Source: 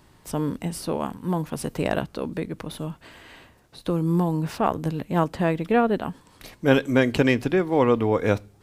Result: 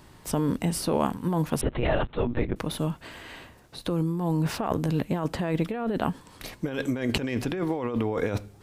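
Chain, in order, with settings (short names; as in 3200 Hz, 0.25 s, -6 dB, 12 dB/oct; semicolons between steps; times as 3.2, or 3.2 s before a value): negative-ratio compressor -26 dBFS, ratio -1; 1.61–2.56 monotone LPC vocoder at 8 kHz 120 Hz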